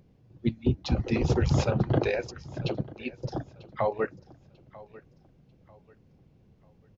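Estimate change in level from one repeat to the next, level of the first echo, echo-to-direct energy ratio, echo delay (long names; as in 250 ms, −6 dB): −9.5 dB, −20.5 dB, −20.0 dB, 943 ms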